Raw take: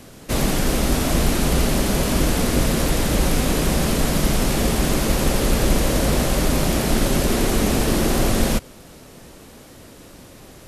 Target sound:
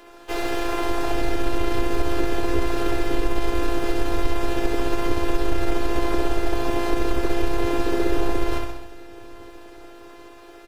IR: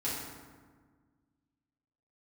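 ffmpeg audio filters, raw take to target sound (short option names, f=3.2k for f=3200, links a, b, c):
-filter_complex "[0:a]aeval=exprs='val(0)+0.00282*(sin(2*PI*50*n/s)+sin(2*PI*2*50*n/s)/2+sin(2*PI*3*50*n/s)/3+sin(2*PI*4*50*n/s)/4+sin(2*PI*5*50*n/s)/5)':c=same,bass=f=250:g=-11,treble=f=4k:g=-7,acrossover=split=240|1600[a][b][c];[a]dynaudnorm=f=290:g=7:m=12.5dB[d];[b]crystalizer=i=5:c=0[e];[c]equalizer=f=10k:t=o:w=1.7:g=-8[f];[d][e][f]amix=inputs=3:normalize=0,aeval=exprs='(tanh(2.24*val(0)+0.8)-tanh(0.8))/2.24':c=same,asplit=2[g][h];[h]aecho=0:1:64|128|192|256|320|384|448:0.631|0.334|0.177|0.0939|0.0498|0.0264|0.014[i];[g][i]amix=inputs=2:normalize=0,afftfilt=real='hypot(re,im)*cos(PI*b)':imag='0':win_size=512:overlap=0.75,acompressor=threshold=-28dB:ratio=2,asplit=4[j][k][l][m];[k]asetrate=52444,aresample=44100,atempo=0.840896,volume=-9dB[n];[l]asetrate=58866,aresample=44100,atempo=0.749154,volume=-15dB[o];[m]asetrate=66075,aresample=44100,atempo=0.66742,volume=-10dB[p];[j][n][o][p]amix=inputs=4:normalize=0,volume=6.5dB"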